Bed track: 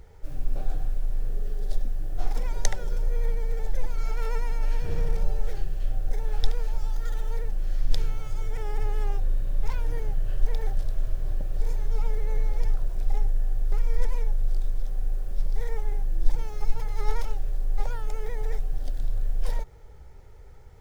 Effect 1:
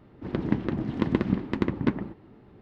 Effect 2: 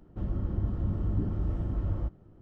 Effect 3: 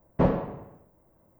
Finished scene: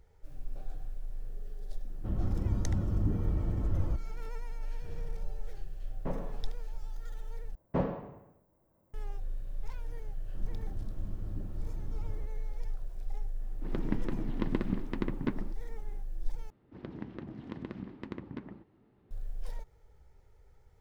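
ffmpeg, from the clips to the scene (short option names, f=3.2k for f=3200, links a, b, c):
-filter_complex "[2:a]asplit=2[a][b];[3:a]asplit=2[c][d];[1:a]asplit=2[e][f];[0:a]volume=-12.5dB[g];[c]alimiter=limit=-13dB:level=0:latency=1:release=71[h];[f]acompressor=threshold=-32dB:ratio=3:attack=50:release=55:knee=1:detection=peak[i];[g]asplit=3[j][k][l];[j]atrim=end=7.554[m];[d]atrim=end=1.39,asetpts=PTS-STARTPTS,volume=-8dB[n];[k]atrim=start=8.936:end=16.504[o];[i]atrim=end=2.61,asetpts=PTS-STARTPTS,volume=-13.5dB[p];[l]atrim=start=19.106[q];[a]atrim=end=2.41,asetpts=PTS-STARTPTS,volume=-1dB,afade=t=in:d=0.004:c=hsin,afade=t=out:st=2.406:d=0.004:c=hsin,adelay=1880[r];[h]atrim=end=1.39,asetpts=PTS-STARTPTS,volume=-13.5dB,afade=t=in:d=0.004:c=hsin,afade=t=out:st=1.386:d=0.004:c=hsin,adelay=5860[s];[b]atrim=end=2.41,asetpts=PTS-STARTPTS,volume=-12.5dB,afade=t=in:d=0.004:c=hsin,afade=t=out:st=2.406:d=0.004:c=hsin,adelay=448938S[t];[e]atrim=end=2.61,asetpts=PTS-STARTPTS,volume=-8dB,afade=t=in:d=0.004:c=hsin,afade=t=out:st=2.606:d=0.004:c=hsin,adelay=13400[u];[m][n]acrossfade=d=0.004:c1=hsin:c2=hsin[v];[v][o]acrossfade=d=0.004:c1=hsin:c2=hsin[w];[w][p]acrossfade=d=0.004:c1=hsin:c2=hsin[x];[x][q]acrossfade=d=0.004:c1=hsin:c2=hsin[y];[y][r][s][t][u]amix=inputs=5:normalize=0"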